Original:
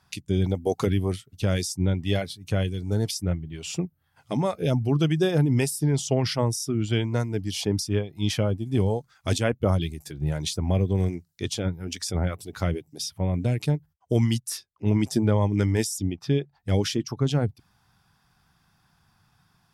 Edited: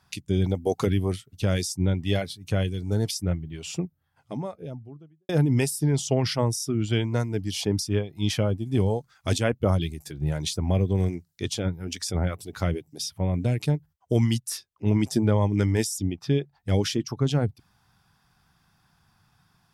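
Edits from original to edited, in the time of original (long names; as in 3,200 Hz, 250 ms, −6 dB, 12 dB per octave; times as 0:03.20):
0:03.40–0:05.29: fade out and dull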